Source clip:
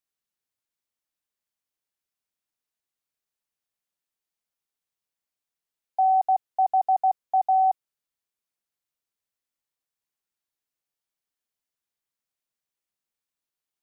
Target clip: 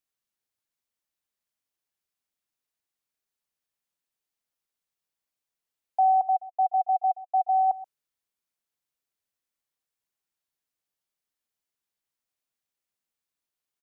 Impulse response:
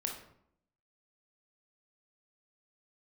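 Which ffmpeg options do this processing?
-filter_complex "[0:a]asplit=3[a][b][c];[a]afade=t=out:st=6.21:d=0.02[d];[b]asplit=3[e][f][g];[e]bandpass=f=730:t=q:w=8,volume=0dB[h];[f]bandpass=f=1.09k:t=q:w=8,volume=-6dB[i];[g]bandpass=f=2.44k:t=q:w=8,volume=-9dB[j];[h][i][j]amix=inputs=3:normalize=0,afade=t=in:st=6.21:d=0.02,afade=t=out:st=7.67:d=0.02[k];[c]afade=t=in:st=7.67:d=0.02[l];[d][k][l]amix=inputs=3:normalize=0,asplit=2[m][n];[n]adelay=128.3,volume=-18dB,highshelf=f=4k:g=-2.89[o];[m][o]amix=inputs=2:normalize=0"

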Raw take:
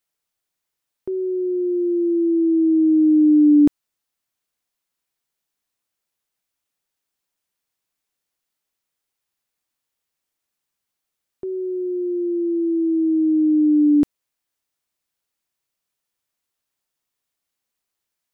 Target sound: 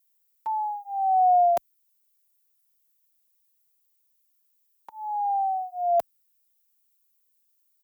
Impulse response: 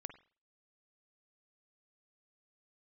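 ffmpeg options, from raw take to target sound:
-filter_complex "[0:a]asetrate=103194,aresample=44100,aemphasis=mode=production:type=riaa,asplit=2[a][b];[b]adelay=4.2,afreqshift=0.33[c];[a][c]amix=inputs=2:normalize=1,volume=-2.5dB"

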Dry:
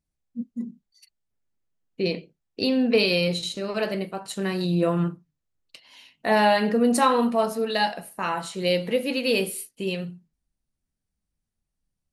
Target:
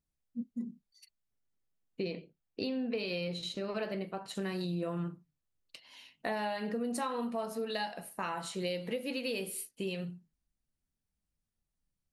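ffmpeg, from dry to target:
-filter_complex "[0:a]asettb=1/sr,asplit=3[a][b][c];[a]atrim=end=2.054[d];[b]atrim=start=2.05:end=4.35,asetpts=PTS-STARTPTS,afade=t=in:d=0.004:c=qsin,afade=t=out:st=2.296:d=0.004:c=qsin,equalizer=f=9.4k:w=0.66:g=-9.5[e];[c]atrim=start=4.346[f];[d][e]acrossfade=d=0.004:c1=hsin:c2=qsin[g];[g][f]acrossfade=d=0.004:c1=qsin:c2=hsin,acompressor=threshold=-28dB:ratio=6,volume=-4.5dB"

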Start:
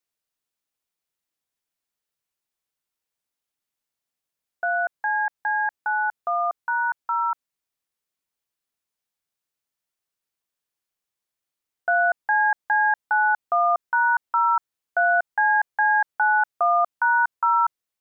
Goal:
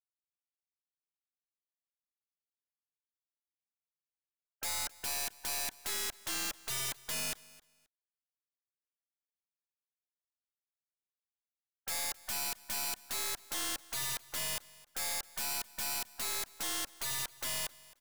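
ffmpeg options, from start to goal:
-filter_complex "[0:a]aemphasis=mode=production:type=riaa,afftfilt=real='re*gte(hypot(re,im),0.0794)':imag='im*gte(hypot(re,im),0.0794)':win_size=1024:overlap=0.75,lowshelf=f=470:g=-5,acompressor=threshold=-24dB:ratio=5,aeval=exprs='(mod(37.6*val(0)+1,2)-1)/37.6':c=same,aeval=exprs='0.0266*(cos(1*acos(clip(val(0)/0.0266,-1,1)))-cos(1*PI/2))+0.00376*(cos(6*acos(clip(val(0)/0.0266,-1,1)))-cos(6*PI/2))':c=same,asplit=2[a][b];[b]aecho=0:1:265|530:0.0841|0.0168[c];[a][c]amix=inputs=2:normalize=0"

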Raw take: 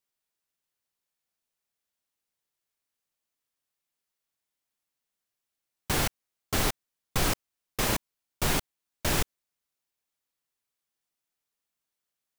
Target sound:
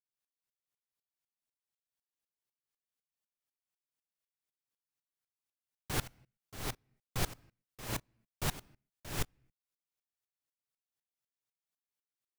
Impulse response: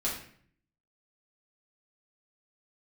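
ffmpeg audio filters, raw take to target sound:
-filter_complex "[0:a]equalizer=f=120:t=o:w=0.41:g=7,asplit=2[a][b];[1:a]atrim=start_sample=2205,afade=t=out:st=0.35:d=0.01,atrim=end_sample=15876[c];[b][c]afir=irnorm=-1:irlink=0,volume=-26.5dB[d];[a][d]amix=inputs=2:normalize=0,aeval=exprs='val(0)*pow(10,-24*if(lt(mod(-4*n/s,1),2*abs(-4)/1000),1-mod(-4*n/s,1)/(2*abs(-4)/1000),(mod(-4*n/s,1)-2*abs(-4)/1000)/(1-2*abs(-4)/1000))/20)':c=same,volume=-4dB"

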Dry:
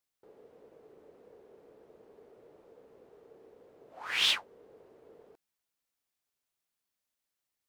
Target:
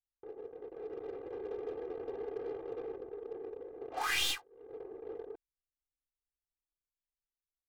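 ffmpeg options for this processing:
-filter_complex "[0:a]asettb=1/sr,asplit=3[a][b][c];[a]atrim=end=0.574[d];[b]atrim=start=0.57:end=2.96,asetpts=PTS-STARTPTS,afade=t=in:d=0.004:c=qsin,afade=t=out:st=2.386:d=0.004:c=qsin,aecho=1:1:180|333|463|573.6|667.6:0.631|0.398|0.251|0.158|0.1,atrim=end_sample=105399[e];[c]atrim=start=2.956[f];[d][e]acrossfade=d=0.004:c1=hsin:c2=qsin[g];[g][f]acrossfade=d=0.004:c1=qsin:c2=hsin,anlmdn=0.000158,crystalizer=i=4.5:c=0,dynaudnorm=f=250:g=11:m=4.5dB,aeval=exprs='(tanh(5.01*val(0)+0.65)-tanh(0.65))/5.01':c=same,aecho=1:1:2.5:0.79,acompressor=threshold=-43dB:ratio=6,volume=10.5dB"

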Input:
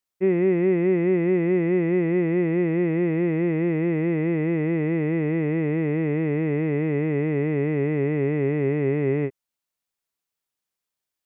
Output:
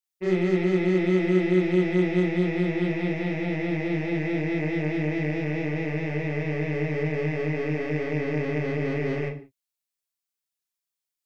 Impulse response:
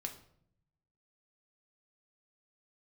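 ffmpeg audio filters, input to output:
-filter_complex "[0:a]highshelf=f=2.1k:g=10.5,aeval=exprs='0.282*(cos(1*acos(clip(val(0)/0.282,-1,1)))-cos(1*PI/2))+0.0224*(cos(7*acos(clip(val(0)/0.282,-1,1)))-cos(7*PI/2))':c=same,asplit=2[a][b];[1:a]atrim=start_sample=2205,afade=t=out:st=0.23:d=0.01,atrim=end_sample=10584,adelay=33[c];[b][c]afir=irnorm=-1:irlink=0,volume=4.5dB[d];[a][d]amix=inputs=2:normalize=0,volume=-8.5dB"

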